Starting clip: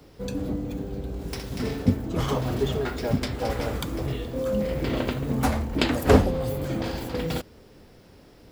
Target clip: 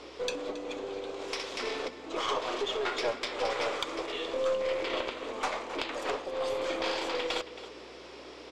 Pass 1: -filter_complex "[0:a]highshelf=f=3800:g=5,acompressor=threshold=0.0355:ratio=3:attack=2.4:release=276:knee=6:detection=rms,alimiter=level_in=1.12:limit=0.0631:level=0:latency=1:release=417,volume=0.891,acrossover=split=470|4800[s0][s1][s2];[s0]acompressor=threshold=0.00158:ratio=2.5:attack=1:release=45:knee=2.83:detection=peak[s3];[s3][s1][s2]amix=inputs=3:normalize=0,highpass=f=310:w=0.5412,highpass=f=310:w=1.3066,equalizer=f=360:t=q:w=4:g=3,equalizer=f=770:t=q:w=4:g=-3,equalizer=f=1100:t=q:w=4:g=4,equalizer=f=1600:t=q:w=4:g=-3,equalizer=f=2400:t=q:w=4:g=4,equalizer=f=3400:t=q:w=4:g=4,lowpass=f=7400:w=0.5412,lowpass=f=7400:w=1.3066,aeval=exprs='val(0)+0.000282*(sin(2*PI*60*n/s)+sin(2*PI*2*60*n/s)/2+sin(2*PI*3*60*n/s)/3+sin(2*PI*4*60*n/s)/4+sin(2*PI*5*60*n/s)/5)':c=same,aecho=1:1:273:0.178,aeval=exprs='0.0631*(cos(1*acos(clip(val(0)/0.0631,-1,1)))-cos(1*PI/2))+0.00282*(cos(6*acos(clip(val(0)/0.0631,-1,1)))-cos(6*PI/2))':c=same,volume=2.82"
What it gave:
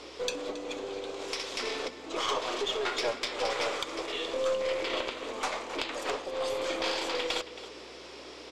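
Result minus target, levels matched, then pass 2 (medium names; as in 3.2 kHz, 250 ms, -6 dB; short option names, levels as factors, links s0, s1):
8 kHz band +3.5 dB
-filter_complex "[0:a]highshelf=f=3800:g=-2,acompressor=threshold=0.0355:ratio=3:attack=2.4:release=276:knee=6:detection=rms,alimiter=level_in=1.12:limit=0.0631:level=0:latency=1:release=417,volume=0.891,acrossover=split=470|4800[s0][s1][s2];[s0]acompressor=threshold=0.00158:ratio=2.5:attack=1:release=45:knee=2.83:detection=peak[s3];[s3][s1][s2]amix=inputs=3:normalize=0,highpass=f=310:w=0.5412,highpass=f=310:w=1.3066,equalizer=f=360:t=q:w=4:g=3,equalizer=f=770:t=q:w=4:g=-3,equalizer=f=1100:t=q:w=4:g=4,equalizer=f=1600:t=q:w=4:g=-3,equalizer=f=2400:t=q:w=4:g=4,equalizer=f=3400:t=q:w=4:g=4,lowpass=f=7400:w=0.5412,lowpass=f=7400:w=1.3066,aeval=exprs='val(0)+0.000282*(sin(2*PI*60*n/s)+sin(2*PI*2*60*n/s)/2+sin(2*PI*3*60*n/s)/3+sin(2*PI*4*60*n/s)/4+sin(2*PI*5*60*n/s)/5)':c=same,aecho=1:1:273:0.178,aeval=exprs='0.0631*(cos(1*acos(clip(val(0)/0.0631,-1,1)))-cos(1*PI/2))+0.00282*(cos(6*acos(clip(val(0)/0.0631,-1,1)))-cos(6*PI/2))':c=same,volume=2.82"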